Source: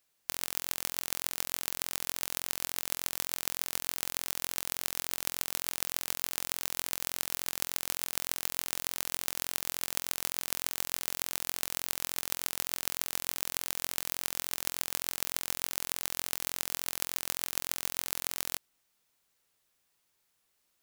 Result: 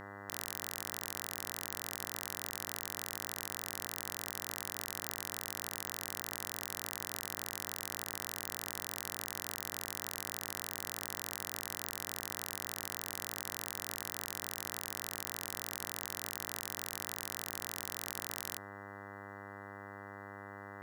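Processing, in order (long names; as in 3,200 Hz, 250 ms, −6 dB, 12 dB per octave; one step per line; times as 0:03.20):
hum with harmonics 100 Hz, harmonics 20, −47 dBFS −1 dB per octave
brickwall limiter −11 dBFS, peak gain reduction 9.5 dB
level −1.5 dB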